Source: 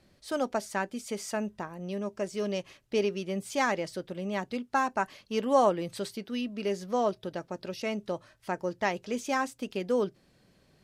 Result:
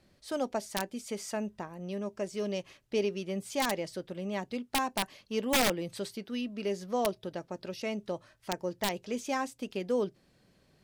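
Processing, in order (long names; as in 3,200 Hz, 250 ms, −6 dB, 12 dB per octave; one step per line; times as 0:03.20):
wrap-around overflow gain 17 dB
dynamic equaliser 1,400 Hz, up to −5 dB, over −46 dBFS, Q 2.1
level −2 dB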